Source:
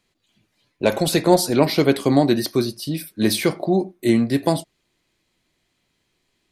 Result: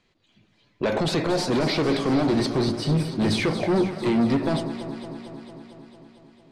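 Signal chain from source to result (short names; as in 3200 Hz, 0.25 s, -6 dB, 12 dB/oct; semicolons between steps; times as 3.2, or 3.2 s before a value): 2.28–3.35 thirty-one-band EQ 100 Hz +7 dB, 160 Hz +12 dB, 8000 Hz +8 dB; limiter -11 dBFS, peak gain reduction 9.5 dB; soft clip -22.5 dBFS, distortion -8 dB; air absorption 110 m; echo with dull and thin repeats by turns 0.113 s, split 1200 Hz, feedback 84%, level -9 dB; gain +4.5 dB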